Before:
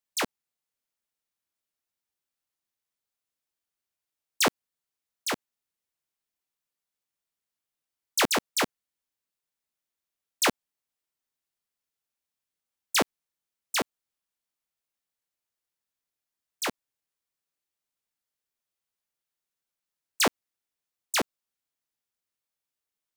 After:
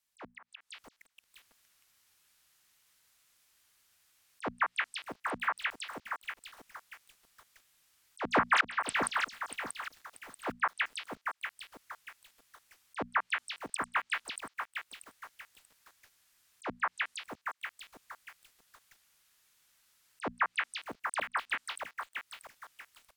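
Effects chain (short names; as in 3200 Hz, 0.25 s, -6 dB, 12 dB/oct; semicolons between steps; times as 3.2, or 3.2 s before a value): compressor 4:1, threshold -30 dBFS, peak gain reduction 9.5 dB; frequency shift +14 Hz; treble ducked by the level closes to 1200 Hz, closed at -35 dBFS; on a send: delay with a stepping band-pass 0.179 s, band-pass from 1400 Hz, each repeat 0.7 oct, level -0.5 dB; on the sum: AGC gain up to 12.5 dB; auto swell 0.37 s; bell 400 Hz -8.5 dB 2.6 oct; notches 60/120/180/240 Hz; lo-fi delay 0.636 s, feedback 35%, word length 10-bit, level -6 dB; gain +7.5 dB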